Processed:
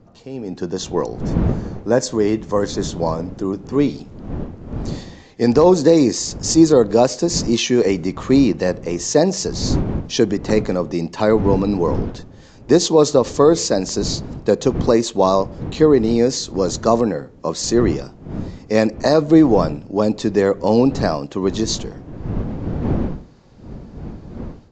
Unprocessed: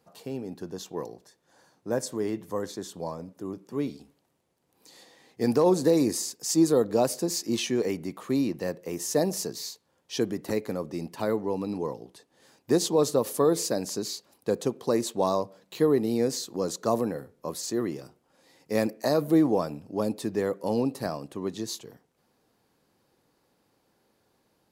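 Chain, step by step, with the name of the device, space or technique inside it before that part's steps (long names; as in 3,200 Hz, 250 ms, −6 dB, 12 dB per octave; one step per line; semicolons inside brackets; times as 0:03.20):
smartphone video outdoors (wind on the microphone −40 dBFS; automatic gain control gain up to 14 dB; AAC 64 kbit/s 16,000 Hz)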